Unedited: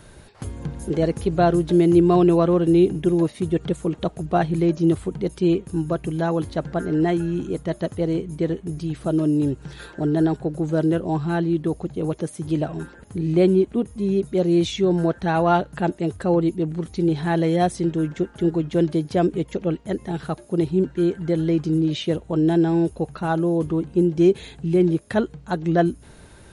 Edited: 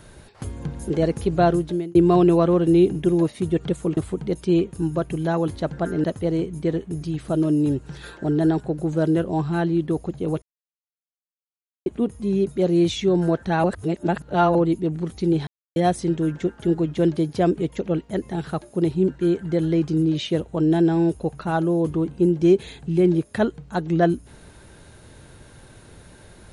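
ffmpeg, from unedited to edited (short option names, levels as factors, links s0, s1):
-filter_complex "[0:a]asplit=10[s0][s1][s2][s3][s4][s5][s6][s7][s8][s9];[s0]atrim=end=1.95,asetpts=PTS-STARTPTS,afade=t=out:st=1.48:d=0.47[s10];[s1]atrim=start=1.95:end=3.972,asetpts=PTS-STARTPTS,afade=t=in:d=0.004:c=hsin[s11];[s2]atrim=start=4.908:end=6.982[s12];[s3]atrim=start=7.798:end=12.18,asetpts=PTS-STARTPTS,afade=t=out:st=4.378:d=0.004:c=hsin[s13];[s4]atrim=start=12.18:end=13.62,asetpts=PTS-STARTPTS,volume=0[s14];[s5]atrim=start=13.62:end=15.402,asetpts=PTS-STARTPTS,afade=t=in:d=0.004:c=hsin[s15];[s6]atrim=start=15.398:end=16.312,asetpts=PTS-STARTPTS,areverse[s16];[s7]atrim=start=16.308:end=17.23,asetpts=PTS-STARTPTS,afade=t=out:st=0.918:d=0.004:c=hsin[s17];[s8]atrim=start=17.23:end=17.52,asetpts=PTS-STARTPTS,volume=0[s18];[s9]atrim=start=17.52,asetpts=PTS-STARTPTS,afade=t=in:d=0.004:c=hsin[s19];[s10][s11]concat=n=2:v=0:a=1[s20];[s20][s12]acrossfade=d=0.004:c1=hsin:c2=hsin[s21];[s13][s14][s15]concat=n=3:v=0:a=1[s22];[s21][s22]acrossfade=d=0.004:c1=hsin:c2=hsin[s23];[s23][s16]acrossfade=d=0.004:c1=hsin:c2=hsin[s24];[s17][s18][s19]concat=n=3:v=0:a=1[s25];[s24][s25]acrossfade=d=0.004:c1=hsin:c2=hsin"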